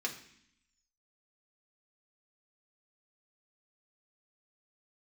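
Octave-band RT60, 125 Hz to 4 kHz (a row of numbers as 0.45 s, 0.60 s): 0.90 s, 1.0 s, 0.60 s, 0.65 s, 0.85 s, 0.85 s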